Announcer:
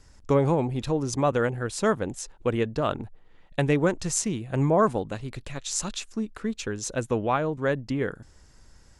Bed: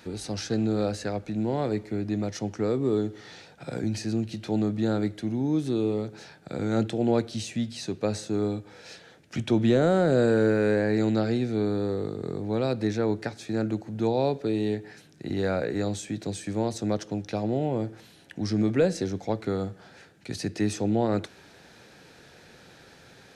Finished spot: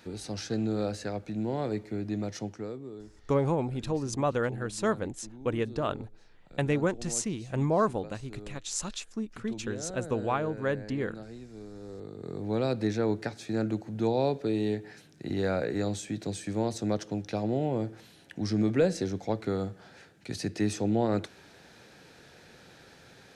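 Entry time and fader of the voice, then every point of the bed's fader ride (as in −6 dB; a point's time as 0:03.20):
3.00 s, −4.5 dB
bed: 0:02.41 −4 dB
0:02.94 −19 dB
0:11.71 −19 dB
0:12.48 −2 dB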